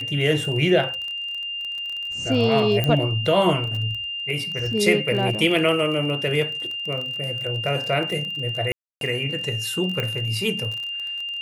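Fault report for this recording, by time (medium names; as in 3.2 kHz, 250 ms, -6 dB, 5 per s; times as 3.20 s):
crackle 25 per s -28 dBFS
whine 2.8 kHz -27 dBFS
2.84 s: pop -9 dBFS
8.72–9.01 s: dropout 292 ms
10.00 s: pop -13 dBFS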